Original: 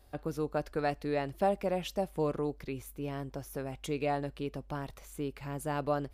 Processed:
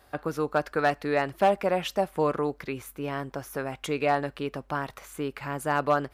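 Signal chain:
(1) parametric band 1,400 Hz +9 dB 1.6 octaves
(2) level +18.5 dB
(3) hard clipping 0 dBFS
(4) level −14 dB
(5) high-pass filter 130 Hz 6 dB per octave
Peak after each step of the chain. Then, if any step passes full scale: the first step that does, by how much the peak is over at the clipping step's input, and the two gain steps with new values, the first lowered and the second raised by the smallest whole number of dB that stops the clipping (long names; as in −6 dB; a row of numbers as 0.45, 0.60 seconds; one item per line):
−13.0, +5.5, 0.0, −14.0, −12.0 dBFS
step 2, 5.5 dB
step 2 +12.5 dB, step 4 −8 dB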